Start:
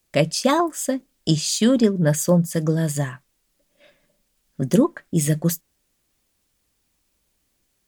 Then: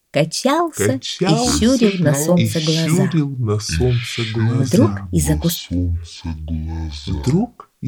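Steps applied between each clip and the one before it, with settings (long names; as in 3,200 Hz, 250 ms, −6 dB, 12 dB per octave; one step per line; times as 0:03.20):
delay with pitch and tempo change per echo 573 ms, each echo −6 semitones, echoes 2
level +2.5 dB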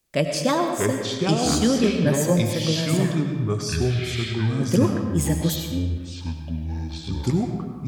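comb and all-pass reverb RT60 1.5 s, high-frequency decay 0.7×, pre-delay 55 ms, DRR 5 dB
level −6 dB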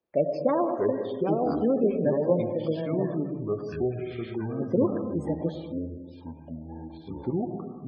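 resonant band-pass 500 Hz, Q 1.1
gate on every frequency bin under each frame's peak −30 dB strong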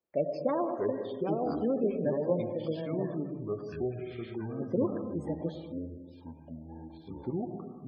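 dynamic equaliser 4,100 Hz, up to +3 dB, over −47 dBFS, Q 0.83
level −5.5 dB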